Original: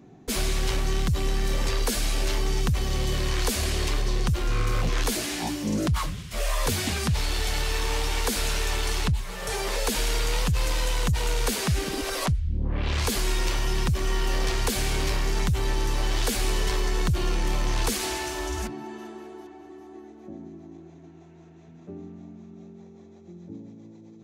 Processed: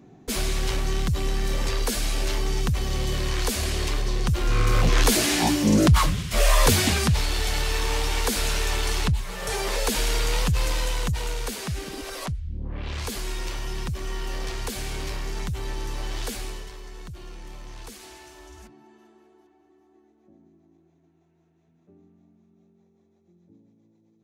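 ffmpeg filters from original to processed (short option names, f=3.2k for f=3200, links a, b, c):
-af "volume=8dB,afade=t=in:st=4.2:d=1.11:silence=0.398107,afade=t=out:st=6.6:d=0.67:silence=0.473151,afade=t=out:st=10.55:d=0.96:silence=0.446684,afade=t=out:st=16.29:d=0.41:silence=0.316228"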